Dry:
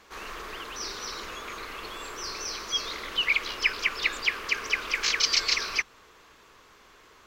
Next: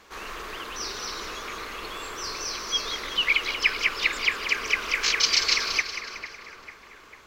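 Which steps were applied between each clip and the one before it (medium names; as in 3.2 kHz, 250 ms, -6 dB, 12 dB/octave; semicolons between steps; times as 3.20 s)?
two-band feedback delay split 2.1 kHz, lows 447 ms, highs 185 ms, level -9 dB; trim +2 dB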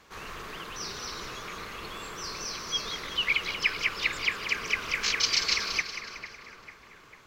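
octave divider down 1 oct, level 0 dB; trim -4 dB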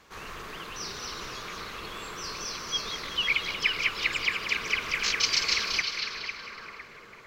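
repeats whose band climbs or falls 503 ms, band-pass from 3.3 kHz, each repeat -1.4 oct, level -4 dB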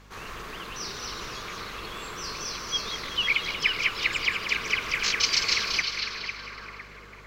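hum 50 Hz, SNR 22 dB; trim +1.5 dB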